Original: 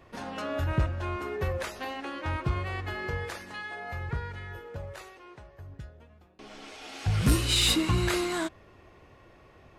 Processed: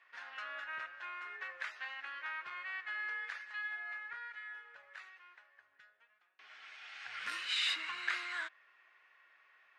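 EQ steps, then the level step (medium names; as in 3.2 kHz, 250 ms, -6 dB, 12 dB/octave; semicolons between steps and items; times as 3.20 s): ladder band-pass 2 kHz, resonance 45%; +5.5 dB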